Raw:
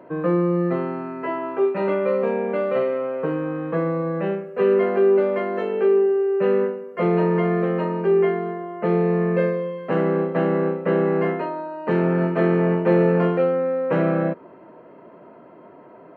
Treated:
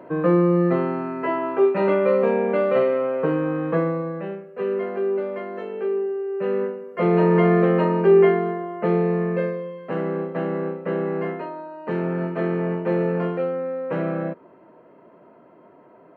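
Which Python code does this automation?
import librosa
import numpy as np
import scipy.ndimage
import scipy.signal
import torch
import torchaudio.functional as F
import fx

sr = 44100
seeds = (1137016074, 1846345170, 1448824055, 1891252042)

y = fx.gain(x, sr, db=fx.line((3.73, 2.5), (4.27, -7.0), (6.23, -7.0), (7.44, 4.0), (8.28, 4.0), (9.64, -5.0)))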